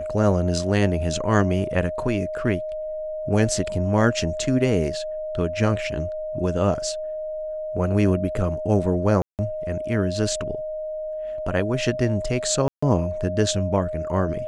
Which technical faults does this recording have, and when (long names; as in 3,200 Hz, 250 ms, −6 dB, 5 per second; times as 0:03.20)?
whistle 620 Hz −27 dBFS
0:09.22–0:09.39: drop-out 168 ms
0:12.68–0:12.82: drop-out 145 ms